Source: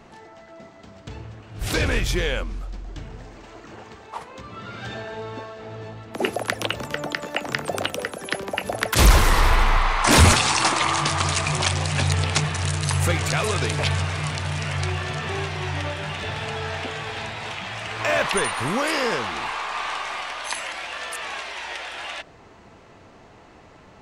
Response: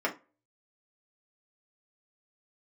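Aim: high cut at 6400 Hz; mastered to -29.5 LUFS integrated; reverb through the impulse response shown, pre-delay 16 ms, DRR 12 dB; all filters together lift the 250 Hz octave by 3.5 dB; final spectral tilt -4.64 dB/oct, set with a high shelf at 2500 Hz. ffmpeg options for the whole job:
-filter_complex "[0:a]lowpass=6.4k,equalizer=f=250:t=o:g=5,highshelf=f=2.5k:g=-7,asplit=2[a][b];[1:a]atrim=start_sample=2205,adelay=16[c];[b][c]afir=irnorm=-1:irlink=0,volume=-21.5dB[d];[a][d]amix=inputs=2:normalize=0,volume=-5dB"

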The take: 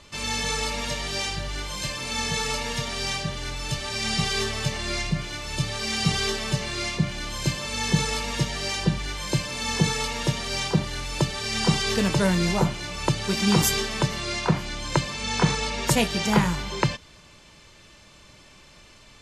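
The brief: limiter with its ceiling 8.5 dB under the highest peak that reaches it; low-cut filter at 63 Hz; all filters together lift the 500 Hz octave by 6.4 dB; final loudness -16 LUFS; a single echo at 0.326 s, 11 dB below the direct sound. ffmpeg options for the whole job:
-af "highpass=63,equalizer=f=500:t=o:g=8,alimiter=limit=-11dB:level=0:latency=1,aecho=1:1:326:0.282,volume=9dB"

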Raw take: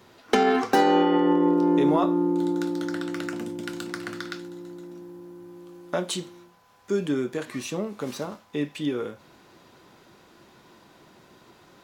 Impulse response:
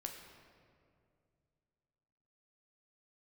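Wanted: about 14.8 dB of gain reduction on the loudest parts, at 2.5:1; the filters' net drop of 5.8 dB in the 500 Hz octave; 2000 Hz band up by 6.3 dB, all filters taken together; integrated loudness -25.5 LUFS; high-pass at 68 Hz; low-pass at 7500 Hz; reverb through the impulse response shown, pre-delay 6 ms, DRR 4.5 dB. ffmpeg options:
-filter_complex "[0:a]highpass=68,lowpass=7.5k,equalizer=f=500:t=o:g=-8.5,equalizer=f=2k:t=o:g=8.5,acompressor=threshold=-41dB:ratio=2.5,asplit=2[a][b];[1:a]atrim=start_sample=2205,adelay=6[c];[b][c]afir=irnorm=-1:irlink=0,volume=-2dB[d];[a][d]amix=inputs=2:normalize=0,volume=13.5dB"

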